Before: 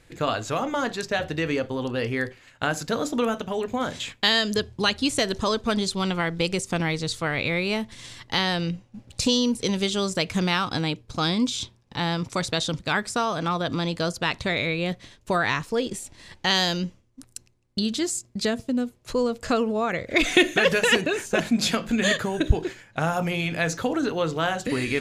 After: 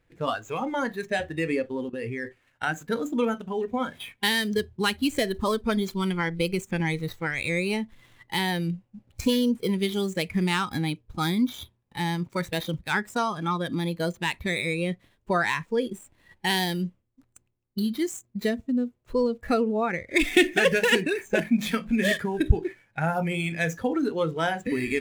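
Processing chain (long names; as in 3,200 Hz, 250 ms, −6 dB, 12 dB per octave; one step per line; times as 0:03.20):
running median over 9 samples
noise reduction from a noise print of the clip's start 12 dB
0:01.84–0:02.25: output level in coarse steps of 16 dB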